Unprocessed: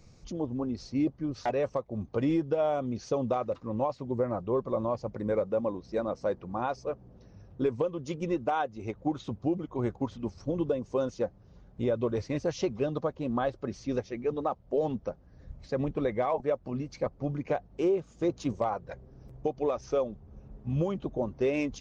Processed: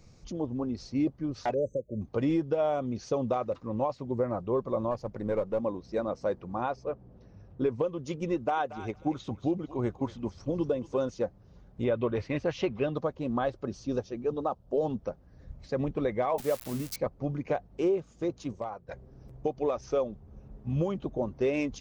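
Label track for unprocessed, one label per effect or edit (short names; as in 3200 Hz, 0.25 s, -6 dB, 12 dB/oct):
1.540000	2.020000	spectral delete 610–6000 Hz
4.910000	5.600000	half-wave gain negative side -3 dB
6.680000	7.810000	LPF 2500 Hz -> 4100 Hz 6 dB/oct
8.340000	11.040000	thinning echo 0.232 s, feedback 18%, high-pass 1200 Hz, level -10 dB
11.840000	12.950000	EQ curve 460 Hz 0 dB, 2800 Hz +6 dB, 5800 Hz -8 dB
13.650000	14.990000	bell 2100 Hz -13.5 dB 0.39 oct
16.380000	16.960000	switching spikes of -28.5 dBFS
17.860000	18.880000	fade out linear, to -10.5 dB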